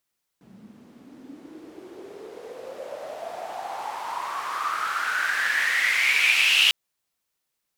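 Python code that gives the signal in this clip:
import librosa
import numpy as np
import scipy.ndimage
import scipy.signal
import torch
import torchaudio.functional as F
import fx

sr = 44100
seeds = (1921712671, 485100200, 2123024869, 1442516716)

y = fx.riser_noise(sr, seeds[0], length_s=6.3, colour='white', kind='bandpass', start_hz=190.0, end_hz=2900.0, q=7.8, swell_db=20, law='exponential')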